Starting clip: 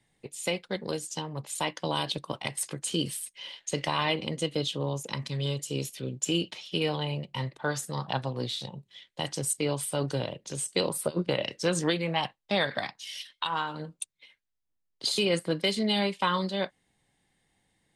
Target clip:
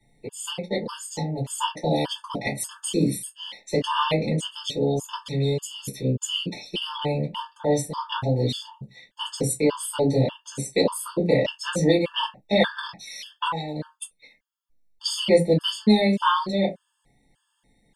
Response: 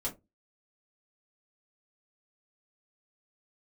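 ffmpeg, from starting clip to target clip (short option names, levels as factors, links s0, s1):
-filter_complex "[1:a]atrim=start_sample=2205,afade=t=out:st=0.21:d=0.01,atrim=end_sample=9702[s0];[0:a][s0]afir=irnorm=-1:irlink=0,acontrast=29,afftfilt=real='re*gt(sin(2*PI*1.7*pts/sr)*(1-2*mod(floor(b*sr/1024/890),2)),0)':imag='im*gt(sin(2*PI*1.7*pts/sr)*(1-2*mod(floor(b*sr/1024/890),2)),0)':win_size=1024:overlap=0.75"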